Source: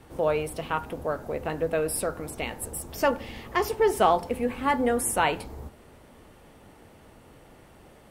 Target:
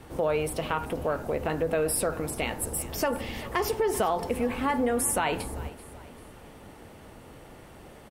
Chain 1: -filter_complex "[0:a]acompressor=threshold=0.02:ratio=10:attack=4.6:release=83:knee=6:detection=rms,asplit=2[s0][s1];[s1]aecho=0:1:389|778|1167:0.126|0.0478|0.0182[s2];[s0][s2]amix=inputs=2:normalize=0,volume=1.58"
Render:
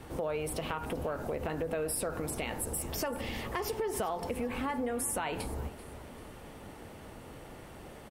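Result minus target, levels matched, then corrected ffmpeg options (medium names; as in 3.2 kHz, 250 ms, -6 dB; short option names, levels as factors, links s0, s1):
compression: peak gain reduction +8 dB
-filter_complex "[0:a]acompressor=threshold=0.0562:ratio=10:attack=4.6:release=83:knee=6:detection=rms,asplit=2[s0][s1];[s1]aecho=0:1:389|778|1167:0.126|0.0478|0.0182[s2];[s0][s2]amix=inputs=2:normalize=0,volume=1.58"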